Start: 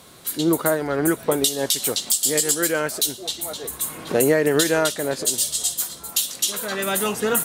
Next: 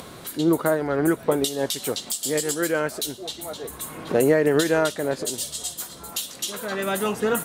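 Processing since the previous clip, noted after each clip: high shelf 2900 Hz -9 dB; upward compressor, threshold -32 dBFS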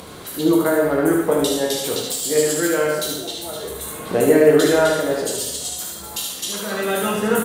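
echo 74 ms -5 dB; plate-style reverb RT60 0.96 s, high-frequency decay 0.95×, DRR 0 dB

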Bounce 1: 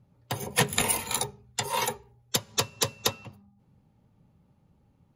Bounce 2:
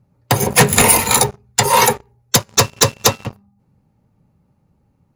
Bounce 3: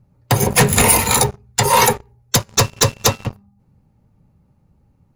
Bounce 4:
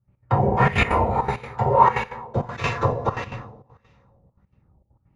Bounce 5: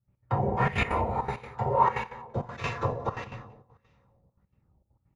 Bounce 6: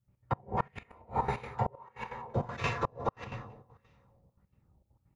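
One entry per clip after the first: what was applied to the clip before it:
bell 3300 Hz -7 dB 0.4 oct; sample leveller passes 3; in parallel at -2 dB: compressor, threshold -26 dBFS, peak gain reduction 12.5 dB; on the sum: gain +4.5 dB
low shelf 76 Hz +10.5 dB; limiter -4.5 dBFS, peak gain reduction 4 dB
two-slope reverb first 0.72 s, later 2 s, from -18 dB, DRR -6.5 dB; step gate ".x.xxxxxx.x.xxxx" 199 bpm -12 dB; LFO low-pass sine 1.6 Hz 630–2500 Hz; gain -12 dB
echo 0.181 s -22 dB; gain -7.5 dB
flipped gate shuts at -17 dBFS, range -31 dB

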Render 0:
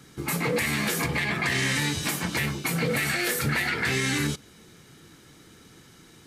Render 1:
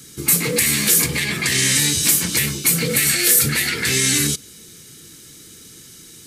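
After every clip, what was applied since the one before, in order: EQ curve 470 Hz 0 dB, 720 Hz -10 dB, 8500 Hz +14 dB; gain +4 dB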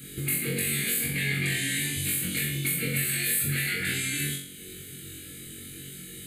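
compressor 2.5:1, threshold -32 dBFS, peak gain reduction 14 dB; fixed phaser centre 2400 Hz, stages 4; on a send: flutter echo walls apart 3.7 m, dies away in 0.57 s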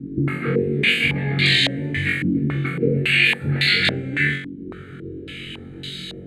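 stepped low-pass 3.6 Hz 290–4000 Hz; gain +8.5 dB

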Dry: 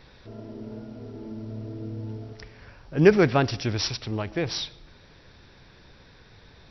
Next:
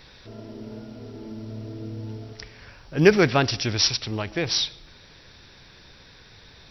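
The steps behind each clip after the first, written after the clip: high shelf 2200 Hz +9.5 dB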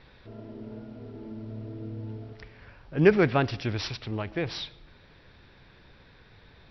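air absorption 310 m; gain -2.5 dB

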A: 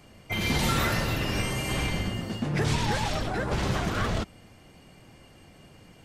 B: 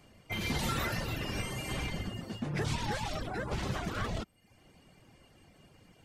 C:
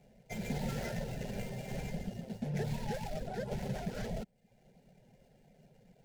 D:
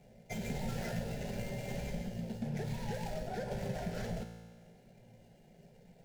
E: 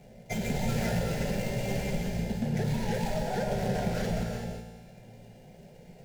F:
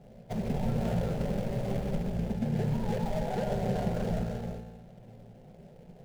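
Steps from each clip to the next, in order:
reverb removal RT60 0.6 s; gain -6 dB
median filter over 15 samples; fixed phaser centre 310 Hz, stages 6; gain +1 dB
compressor 2.5:1, threshold -39 dBFS, peak gain reduction 6 dB; resonator 57 Hz, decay 1.6 s, harmonics all, mix 80%; gain +14 dB
non-linear reverb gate 0.4 s rising, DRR 4 dB; gain +7.5 dB
median filter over 25 samples

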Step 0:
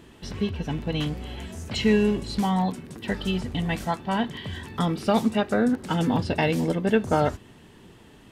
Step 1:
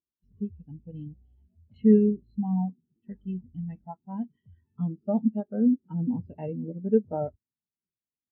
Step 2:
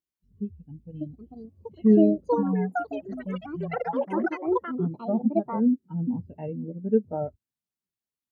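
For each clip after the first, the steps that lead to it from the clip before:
dynamic EQ 4900 Hz, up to -5 dB, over -45 dBFS, Q 0.71; spectral expander 2.5:1
echoes that change speed 0.735 s, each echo +7 st, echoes 3

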